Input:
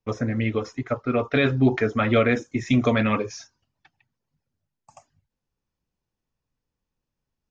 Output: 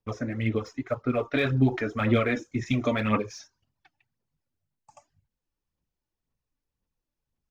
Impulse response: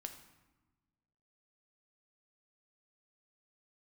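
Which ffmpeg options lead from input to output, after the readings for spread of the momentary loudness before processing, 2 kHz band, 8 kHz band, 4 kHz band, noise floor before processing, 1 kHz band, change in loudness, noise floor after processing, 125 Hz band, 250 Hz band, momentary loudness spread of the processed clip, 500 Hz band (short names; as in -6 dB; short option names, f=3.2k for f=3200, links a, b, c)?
9 LU, -4.5 dB, n/a, -4.5 dB, -85 dBFS, -4.0 dB, -4.0 dB, under -85 dBFS, -2.5 dB, -4.0 dB, 9 LU, -5.0 dB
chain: -af "aphaser=in_gain=1:out_gain=1:delay=3.5:decay=0.49:speed=1.9:type=sinusoidal,volume=-5.5dB"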